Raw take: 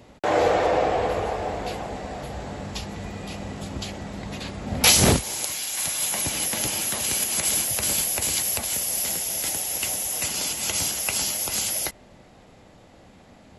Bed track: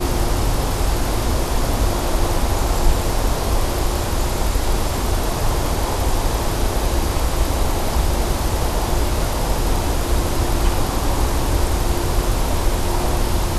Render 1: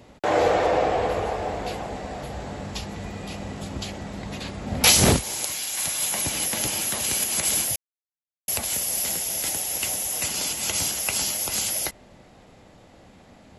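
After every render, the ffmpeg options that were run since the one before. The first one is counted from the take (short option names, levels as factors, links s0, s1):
-filter_complex "[0:a]asplit=3[s0][s1][s2];[s0]atrim=end=7.76,asetpts=PTS-STARTPTS,afade=t=out:st=7.756:d=0.004:c=hsin[s3];[s1]atrim=start=7.76:end=8.48,asetpts=PTS-STARTPTS,volume=0[s4];[s2]atrim=start=8.48,asetpts=PTS-STARTPTS,afade=t=in:d=0.004:c=hsin[s5];[s3][s4][s5]concat=n=3:v=0:a=1"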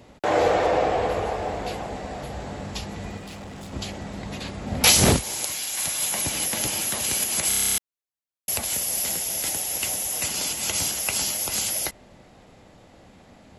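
-filter_complex "[0:a]asettb=1/sr,asplit=3[s0][s1][s2];[s0]atrim=end=3.174[s3];[s1]atrim=start=3.17:end=3.73,asetpts=PTS-STARTPTS,afade=t=in:d=0.004:c=qsin,afade=t=out:st=0.556:d=0.004:c=qsin,asoftclip=type=hard:threshold=0.0158[s4];[s2]atrim=start=3.726[s5];[s3][s4]acrossfade=d=0.004:c1=hsin:c2=qsin[s6];[s6][s5]acrossfade=d=0.004:c1=qsin:c2=hsin,asplit=11[s7][s8][s9][s10][s11][s12][s13][s14][s15][s16][s17];[s7]atrim=end=7.512[s18];[s8]atrim=start=7.478:end=7.512[s19];[s9]atrim=start=7.478:end=7.512[s20];[s10]atrim=start=7.478:end=7.512[s21];[s11]atrim=start=7.478:end=7.512[s22];[s12]atrim=start=7.478:end=7.512[s23];[s13]atrim=start=7.478:end=7.512[s24];[s14]atrim=start=7.478:end=7.512[s25];[s15]atrim=start=7.478:end=7.512[s26];[s16]atrim=start=7.478:end=7.512[s27];[s17]atrim=start=7.778[s28];[s18][s19]acrossfade=d=0.004:c1=hsin:c2=hsin[s29];[s29][s20]acrossfade=d=0.004:c1=hsin:c2=hsin[s30];[s30][s21]acrossfade=d=0.004:c1=hsin:c2=hsin[s31];[s31][s22]acrossfade=d=0.004:c1=hsin:c2=hsin[s32];[s32][s23]acrossfade=d=0.004:c1=hsin:c2=hsin[s33];[s33][s24]acrossfade=d=0.004:c1=hsin:c2=hsin[s34];[s34][s25]acrossfade=d=0.004:c1=hsin:c2=hsin[s35];[s35][s26]acrossfade=d=0.004:c1=hsin:c2=hsin[s36];[s36][s27]acrossfade=d=0.004:c1=hsin:c2=hsin[s37];[s37][s28]acrossfade=d=0.004:c1=hsin:c2=hsin"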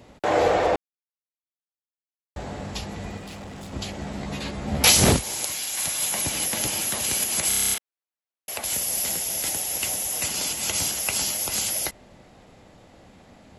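-filter_complex "[0:a]asettb=1/sr,asplit=3[s0][s1][s2];[s0]atrim=end=3.974[s3];[s1]atrim=start=3.97:end=4.84,asetpts=PTS-STARTPTS,afade=t=in:d=0.004:c=qsin,afade=t=out:st=0.866:d=0.004:c=qsin,asplit=2[s4][s5];[s5]adelay=14,volume=0.708[s6];[s4][s6]amix=inputs=2:normalize=0,atrim=end_sample=38367[s7];[s2]atrim=start=4.836[s8];[s3][s7]acrossfade=d=0.004:c1=hsin:c2=qsin[s9];[s9][s8]acrossfade=d=0.004:c1=qsin:c2=hsin,asettb=1/sr,asplit=3[s10][s11][s12];[s10]atrim=end=7.744[s13];[s11]atrim=start=7.74:end=8.64,asetpts=PTS-STARTPTS,afade=t=in:d=0.004:c=qsin,afade=t=out:st=0.896:d=0.004:c=qsin,bass=f=250:g=-14,treble=f=4000:g=-8[s14];[s12]atrim=start=8.636[s15];[s13][s14]acrossfade=d=0.004:c1=hsin:c2=qsin[s16];[s16][s15]acrossfade=d=0.004:c1=qsin:c2=hsin,asplit=3[s17][s18][s19];[s17]atrim=end=0.76,asetpts=PTS-STARTPTS,afade=t=out:st=0.756:d=0.004:c=hsin[s20];[s18]atrim=start=0.76:end=2.36,asetpts=PTS-STARTPTS,volume=0[s21];[s19]atrim=start=2.36,asetpts=PTS-STARTPTS,afade=t=in:d=0.004:c=hsin[s22];[s20][s21][s22]concat=n=3:v=0:a=1"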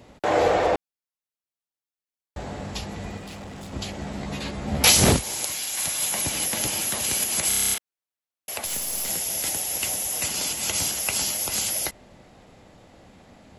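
-filter_complex "[0:a]asplit=3[s0][s1][s2];[s0]afade=t=out:st=8.65:d=0.02[s3];[s1]aeval=exprs='if(lt(val(0),0),0.447*val(0),val(0))':c=same,afade=t=in:st=8.65:d=0.02,afade=t=out:st=9.08:d=0.02[s4];[s2]afade=t=in:st=9.08:d=0.02[s5];[s3][s4][s5]amix=inputs=3:normalize=0"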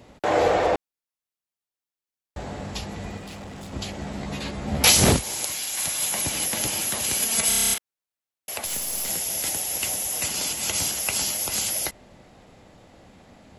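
-filter_complex "[0:a]asettb=1/sr,asplit=3[s0][s1][s2];[s0]atrim=end=7.234[s3];[s1]atrim=start=7.23:end=7.74,asetpts=PTS-STARTPTS,afade=t=in:d=0.004:c=qsin,afade=t=out:st=0.506:d=0.004:c=qsin,aecho=1:1:4.4:0.78,atrim=end_sample=22491[s4];[s2]atrim=start=7.736[s5];[s3][s4]acrossfade=d=0.004:c1=hsin:c2=qsin[s6];[s6][s5]acrossfade=d=0.004:c1=qsin:c2=hsin"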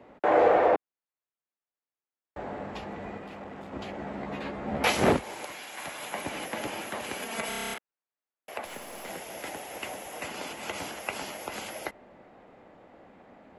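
-filter_complex "[0:a]acrossover=split=220 2400:gain=0.2 1 0.0891[s0][s1][s2];[s0][s1][s2]amix=inputs=3:normalize=0"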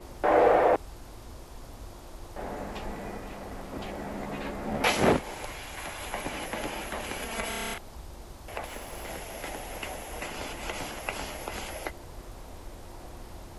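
-filter_complex "[1:a]volume=0.0531[s0];[0:a][s0]amix=inputs=2:normalize=0"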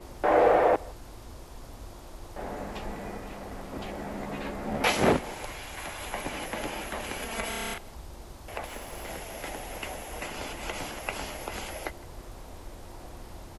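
-af "aecho=1:1:160:0.0708"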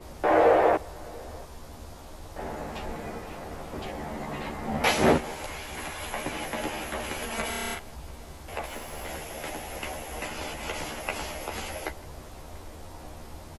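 -filter_complex "[0:a]asplit=2[s0][s1];[s1]adelay=13,volume=0.708[s2];[s0][s2]amix=inputs=2:normalize=0,aecho=1:1:688:0.0631"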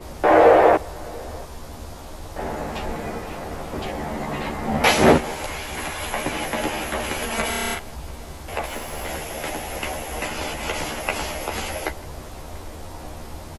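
-af "volume=2.24,alimiter=limit=0.794:level=0:latency=1"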